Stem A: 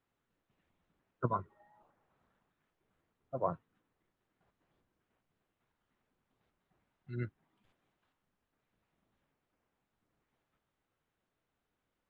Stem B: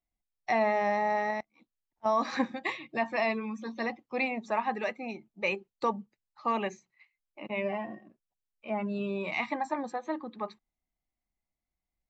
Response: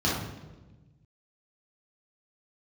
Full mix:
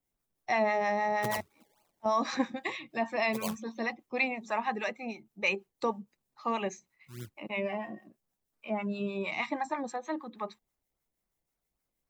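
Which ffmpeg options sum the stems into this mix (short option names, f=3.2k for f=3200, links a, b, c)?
-filter_complex "[0:a]lowpass=f=2k:w=0.5412,lowpass=f=2k:w=1.3066,acrusher=samples=24:mix=1:aa=0.000001:lfo=1:lforange=24:lforate=3.7,volume=-5.5dB[a];[1:a]bandreject=f=4.5k:w=13,acrossover=split=760[b][c];[b]aeval=exprs='val(0)*(1-0.7/2+0.7/2*cos(2*PI*6.3*n/s))':c=same[d];[c]aeval=exprs='val(0)*(1-0.7/2-0.7/2*cos(2*PI*6.3*n/s))':c=same[e];[d][e]amix=inputs=2:normalize=0,volume=2dB[f];[a][f]amix=inputs=2:normalize=0,highshelf=f=5.5k:g=11"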